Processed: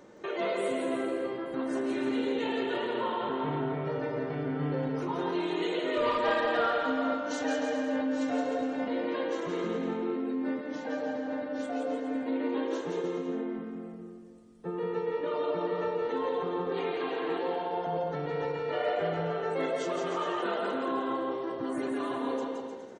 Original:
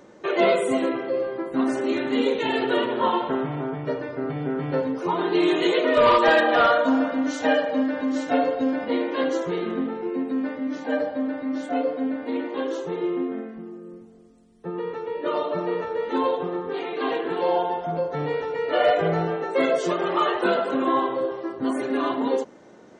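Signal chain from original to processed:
in parallel at −1 dB: compressor whose output falls as the input rises −29 dBFS, ratio −0.5
on the sum: tuned comb filter 460 Hz, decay 0.51 s, mix 60%
bouncing-ball delay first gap 170 ms, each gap 0.8×, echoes 5
level −5 dB

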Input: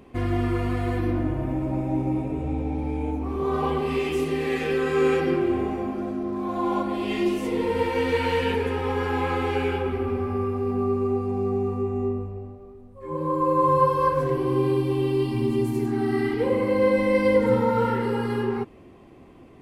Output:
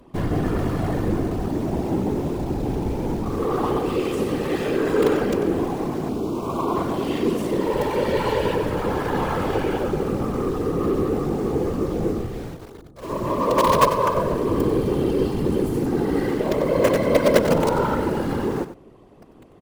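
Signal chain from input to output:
parametric band 2,300 Hz −8 dB 0.66 octaves
in parallel at −10 dB: log-companded quantiser 2 bits
on the sum: random phases in short frames
0:06.09–0:06.76: Butterworth band-reject 1,800 Hz, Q 2.1
single-tap delay 94 ms −12 dB

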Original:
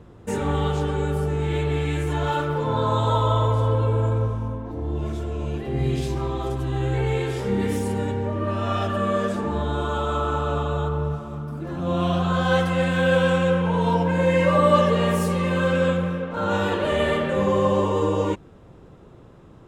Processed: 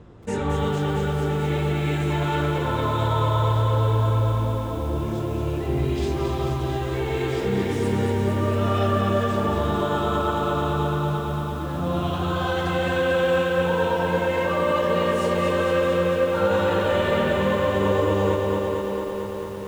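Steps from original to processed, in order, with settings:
high-shelf EQ 4,900 Hz +7 dB
brickwall limiter −16 dBFS, peak gain reduction 10.5 dB
high-frequency loss of the air 83 metres
feedback echo with a low-pass in the loop 345 ms, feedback 61%, low-pass 5,000 Hz, level −8 dB
feedback echo at a low word length 225 ms, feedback 80%, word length 8 bits, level −5 dB

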